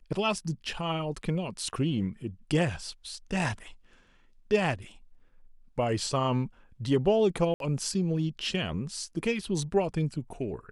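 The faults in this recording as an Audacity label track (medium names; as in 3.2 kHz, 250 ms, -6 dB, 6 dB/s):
7.540000	7.600000	dropout 62 ms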